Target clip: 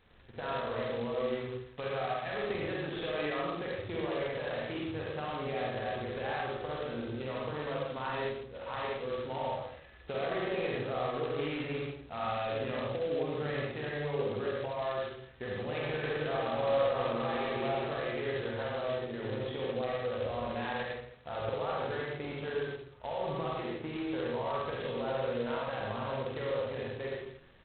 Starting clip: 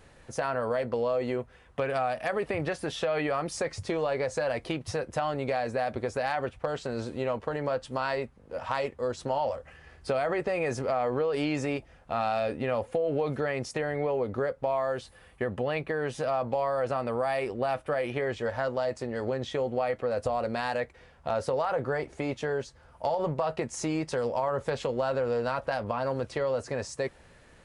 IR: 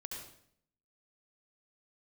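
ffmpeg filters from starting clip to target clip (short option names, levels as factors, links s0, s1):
-filter_complex "[0:a]equalizer=f=610:t=o:w=0.22:g=-4.5,asplit=2[s0][s1];[s1]adelay=47,volume=0.708[s2];[s0][s2]amix=inputs=2:normalize=0,asettb=1/sr,asplit=3[s3][s4][s5];[s3]atrim=end=15.634[s6];[s4]atrim=start=15.63:end=17.88,asetpts=PTS-STARTPTS,afade=t=in:d=0.004:c=qsin,afade=t=out:st=2.246:d=0.004:c=qsin,aecho=1:1:170|297.5|393.1|464.8|518.6:0.631|0.398|0.251|0.158|0.1,atrim=end_sample=99225[s7];[s5]atrim=start=17.876[s8];[s6][s7]acrossfade=d=0.004:c1=hsin:c2=qsin[s9];[s9][s8]acrossfade=d=0.004:c1=qsin:c2=hsin[s10];[1:a]atrim=start_sample=2205,asetrate=48510,aresample=44100[s11];[s10][s11]afir=irnorm=-1:irlink=0,volume=0.631" -ar 8000 -c:a adpcm_g726 -b:a 16k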